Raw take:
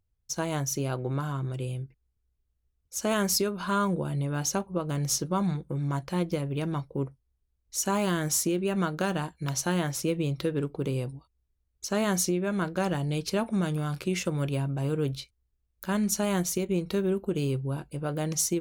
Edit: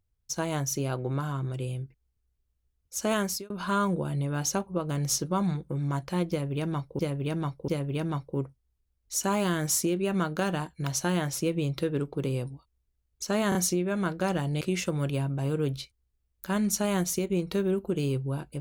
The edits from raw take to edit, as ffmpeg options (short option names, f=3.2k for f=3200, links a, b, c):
-filter_complex "[0:a]asplit=7[a][b][c][d][e][f][g];[a]atrim=end=3.5,asetpts=PTS-STARTPTS,afade=t=out:st=3.15:d=0.35[h];[b]atrim=start=3.5:end=6.992,asetpts=PTS-STARTPTS,afade=t=in:d=0.004:c=hsin[i];[c]atrim=start=6.298:end=6.992[j];[d]atrim=start=6.298:end=12.142[k];[e]atrim=start=12.108:end=12.142[l];[f]atrim=start=12.108:end=13.172[m];[g]atrim=start=13.998[n];[h][i]concat=n=2:v=0:a=1[o];[o][j]acrossfade=d=0.004:c1=hsin:c2=hsin[p];[p][k]acrossfade=d=0.004:c1=hsin:c2=hsin[q];[q][l]acrossfade=d=0.004:c1=hsin:c2=hsin[r];[r][m]acrossfade=d=0.004:c1=hsin:c2=hsin[s];[s][n]acrossfade=d=0.004:c1=hsin:c2=hsin"